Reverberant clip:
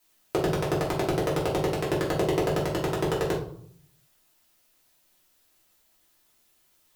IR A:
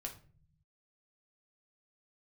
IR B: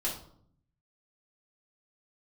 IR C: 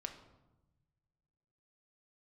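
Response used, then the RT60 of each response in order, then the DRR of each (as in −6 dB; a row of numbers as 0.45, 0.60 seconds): B; 0.45, 0.65, 1.0 seconds; 1.5, −6.5, 4.0 decibels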